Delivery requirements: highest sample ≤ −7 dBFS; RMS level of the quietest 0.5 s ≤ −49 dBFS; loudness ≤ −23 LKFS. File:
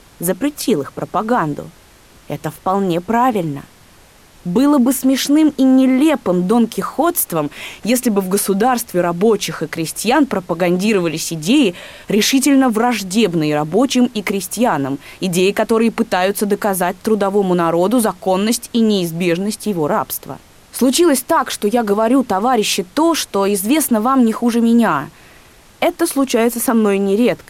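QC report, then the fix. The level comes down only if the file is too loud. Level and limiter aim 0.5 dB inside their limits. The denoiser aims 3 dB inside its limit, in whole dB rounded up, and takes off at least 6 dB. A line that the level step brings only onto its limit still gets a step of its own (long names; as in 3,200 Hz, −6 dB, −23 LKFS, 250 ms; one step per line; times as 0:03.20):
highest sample −4.5 dBFS: out of spec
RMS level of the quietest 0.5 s −46 dBFS: out of spec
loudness −16.0 LKFS: out of spec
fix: level −7.5 dB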